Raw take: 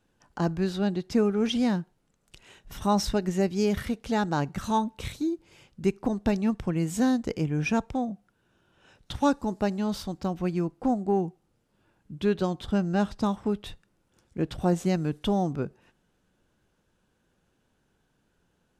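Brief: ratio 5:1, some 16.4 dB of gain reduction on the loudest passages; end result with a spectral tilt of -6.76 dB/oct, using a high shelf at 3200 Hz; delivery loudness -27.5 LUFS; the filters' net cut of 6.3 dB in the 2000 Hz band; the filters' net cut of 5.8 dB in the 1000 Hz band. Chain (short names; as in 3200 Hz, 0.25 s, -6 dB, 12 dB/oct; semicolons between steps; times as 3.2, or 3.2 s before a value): bell 1000 Hz -6.5 dB; bell 2000 Hz -4.5 dB; high shelf 3200 Hz -5 dB; compressor 5:1, threshold -39 dBFS; gain +15.5 dB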